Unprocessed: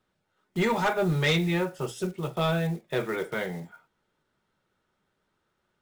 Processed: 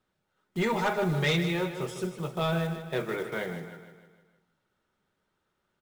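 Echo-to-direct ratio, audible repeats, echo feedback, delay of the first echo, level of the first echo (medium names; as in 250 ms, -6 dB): -8.5 dB, 5, 51%, 154 ms, -10.0 dB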